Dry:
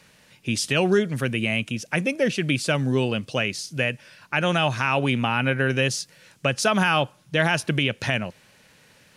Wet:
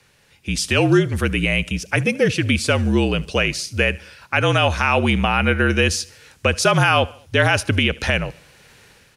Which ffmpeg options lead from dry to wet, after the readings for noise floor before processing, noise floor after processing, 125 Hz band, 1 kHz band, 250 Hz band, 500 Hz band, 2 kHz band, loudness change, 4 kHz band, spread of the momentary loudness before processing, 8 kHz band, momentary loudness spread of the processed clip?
-57 dBFS, -55 dBFS, +5.5 dB, +5.0 dB, +4.0 dB, +4.0 dB, +4.5 dB, +4.5 dB, +4.5 dB, 7 LU, +4.5 dB, 7 LU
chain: -af "dynaudnorm=f=150:g=7:m=4.22,aecho=1:1:74|148|222:0.0708|0.0368|0.0191,afreqshift=-46,volume=0.794"

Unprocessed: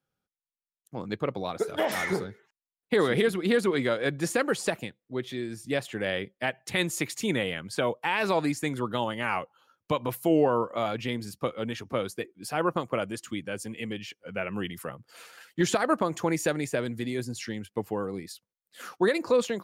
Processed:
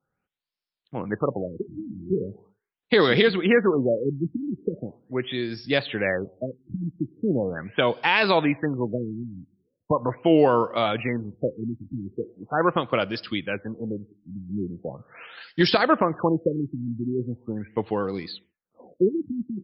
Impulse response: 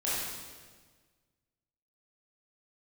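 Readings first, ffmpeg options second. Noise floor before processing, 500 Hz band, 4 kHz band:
under -85 dBFS, +3.5 dB, +5.0 dB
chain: -filter_complex "[0:a]asplit=2[s0][s1];[1:a]atrim=start_sample=2205,afade=t=out:st=0.31:d=0.01,atrim=end_sample=14112[s2];[s1][s2]afir=irnorm=-1:irlink=0,volume=0.0355[s3];[s0][s3]amix=inputs=2:normalize=0,crystalizer=i=3:c=0,afftfilt=real='re*lt(b*sr/1024,320*pow(5600/320,0.5+0.5*sin(2*PI*0.4*pts/sr)))':imag='im*lt(b*sr/1024,320*pow(5600/320,0.5+0.5*sin(2*PI*0.4*pts/sr)))':win_size=1024:overlap=0.75,volume=1.68"

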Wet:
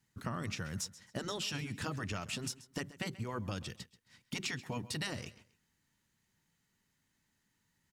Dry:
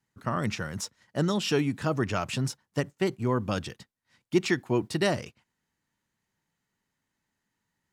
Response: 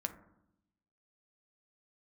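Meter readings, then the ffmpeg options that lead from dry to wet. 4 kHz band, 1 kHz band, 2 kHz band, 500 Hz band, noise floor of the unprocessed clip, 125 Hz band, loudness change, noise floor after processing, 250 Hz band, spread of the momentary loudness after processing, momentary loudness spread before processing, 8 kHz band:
-5.0 dB, -11.0 dB, -8.0 dB, -16.0 dB, -83 dBFS, -10.0 dB, -10.5 dB, -79 dBFS, -13.0 dB, 6 LU, 8 LU, -3.5 dB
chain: -filter_complex "[0:a]afftfilt=real='re*lt(hypot(re,im),0.316)':imag='im*lt(hypot(re,im),0.316)':win_size=1024:overlap=0.75,equalizer=f=710:t=o:w=2.7:g=-7,acompressor=threshold=0.00891:ratio=6,asplit=2[s0][s1];[s1]aecho=0:1:133|266:0.133|0.036[s2];[s0][s2]amix=inputs=2:normalize=0,volume=1.78"

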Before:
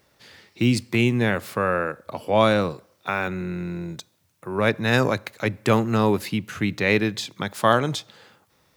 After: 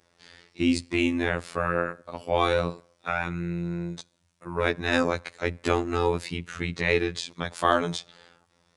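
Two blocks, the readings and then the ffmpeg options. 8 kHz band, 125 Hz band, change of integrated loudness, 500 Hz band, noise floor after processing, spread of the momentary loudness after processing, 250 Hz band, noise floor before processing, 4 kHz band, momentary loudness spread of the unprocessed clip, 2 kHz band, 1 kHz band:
-3.5 dB, -7.0 dB, -4.5 dB, -4.0 dB, -69 dBFS, 10 LU, -5.0 dB, -65 dBFS, -3.5 dB, 11 LU, -3.5 dB, -3.5 dB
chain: -af "aresample=22050,aresample=44100,afftfilt=real='hypot(re,im)*cos(PI*b)':imag='0':win_size=2048:overlap=0.75"

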